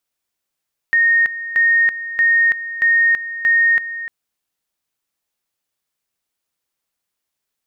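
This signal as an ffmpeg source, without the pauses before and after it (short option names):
-f lavfi -i "aevalsrc='pow(10,(-10.5-13.5*gte(mod(t,0.63),0.33))/20)*sin(2*PI*1850*t)':d=3.15:s=44100"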